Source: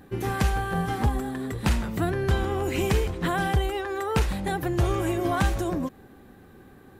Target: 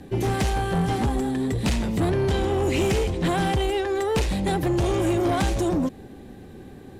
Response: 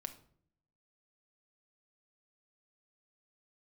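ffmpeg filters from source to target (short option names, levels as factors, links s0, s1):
-filter_complex "[0:a]lowpass=9600,equalizer=f=1300:w=1.5:g=-11,acrossover=split=200|1100[s0][s1][s2];[s0]alimiter=limit=0.0668:level=0:latency=1:release=333[s3];[s3][s1][s2]amix=inputs=3:normalize=0,asoftclip=type=tanh:threshold=0.0501,volume=2.66"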